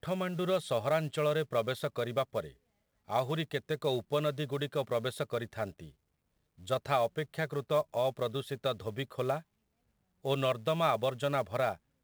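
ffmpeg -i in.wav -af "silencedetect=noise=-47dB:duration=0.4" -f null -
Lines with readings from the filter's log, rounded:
silence_start: 2.52
silence_end: 3.08 | silence_duration: 0.56
silence_start: 5.90
silence_end: 6.60 | silence_duration: 0.70
silence_start: 9.41
silence_end: 10.24 | silence_duration: 0.83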